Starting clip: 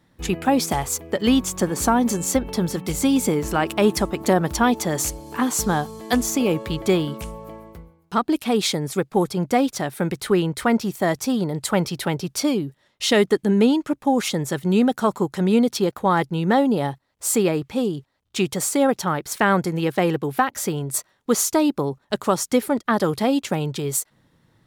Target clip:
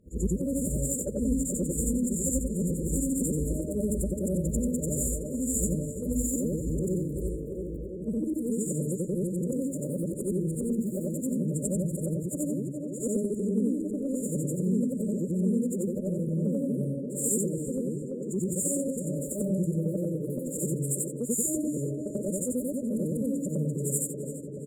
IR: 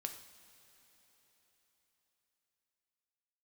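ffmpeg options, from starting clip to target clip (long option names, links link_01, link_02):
-filter_complex "[0:a]afftfilt=real='re':imag='-im':win_size=8192:overlap=0.75,equalizer=frequency=15000:width=0.41:gain=-13,afftfilt=real='re*(1-between(b*sr/4096,620,6900))':imag='im*(1-between(b*sr/4096,620,6900))':win_size=4096:overlap=0.75,asplit=2[link_01][link_02];[link_02]adelay=338,lowpass=frequency=4900:poles=1,volume=-11dB,asplit=2[link_03][link_04];[link_04]adelay=338,lowpass=frequency=4900:poles=1,volume=0.5,asplit=2[link_05][link_06];[link_06]adelay=338,lowpass=frequency=4900:poles=1,volume=0.5,asplit=2[link_07][link_08];[link_08]adelay=338,lowpass=frequency=4900:poles=1,volume=0.5,asplit=2[link_09][link_10];[link_10]adelay=338,lowpass=frequency=4900:poles=1,volume=0.5[link_11];[link_03][link_05][link_07][link_09][link_11]amix=inputs=5:normalize=0[link_12];[link_01][link_12]amix=inputs=2:normalize=0,acrossover=split=180|3000[link_13][link_14][link_15];[link_14]acompressor=threshold=-40dB:ratio=6[link_16];[link_13][link_16][link_15]amix=inputs=3:normalize=0,adynamicequalizer=threshold=0.00562:dfrequency=150:dqfactor=0.79:tfrequency=150:tqfactor=0.79:attack=5:release=100:ratio=0.375:range=2.5:mode=cutabove:tftype=bell,volume=8dB"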